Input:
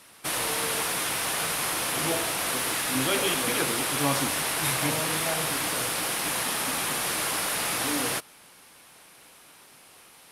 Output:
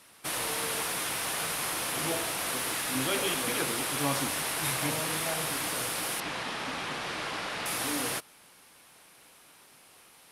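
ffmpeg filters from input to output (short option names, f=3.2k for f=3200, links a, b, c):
-filter_complex "[0:a]asettb=1/sr,asplit=3[a][b][c];[a]atrim=end=6.204[d];[b]atrim=start=6.2:end=7.66,asetpts=PTS-STARTPTS,afade=t=in:d=0.004:c=qsin,afade=t=out:st=1.456:d=0.004:c=qsin,lowpass=4.3k[e];[c]atrim=start=7.656[f];[d][e]acrossfade=d=0.004:c1=hsin:c2=qsin[g];[g][f]acrossfade=d=0.004:c1=qsin:c2=hsin,volume=-4dB"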